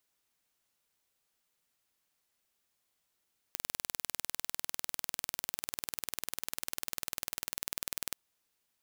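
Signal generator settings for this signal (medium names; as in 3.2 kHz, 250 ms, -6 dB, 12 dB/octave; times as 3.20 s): pulse train 20.1 per s, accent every 0, -7 dBFS 4.61 s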